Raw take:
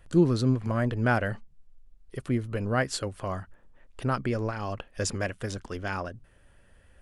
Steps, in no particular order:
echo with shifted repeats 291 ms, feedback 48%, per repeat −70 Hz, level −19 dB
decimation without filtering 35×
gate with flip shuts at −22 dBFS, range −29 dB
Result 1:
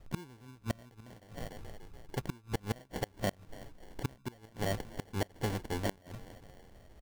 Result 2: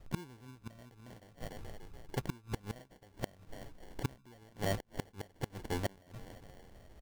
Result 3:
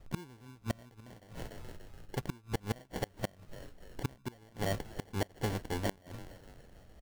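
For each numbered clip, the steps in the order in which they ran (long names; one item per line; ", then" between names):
echo with shifted repeats, then decimation without filtering, then gate with flip
echo with shifted repeats, then gate with flip, then decimation without filtering
decimation without filtering, then echo with shifted repeats, then gate with flip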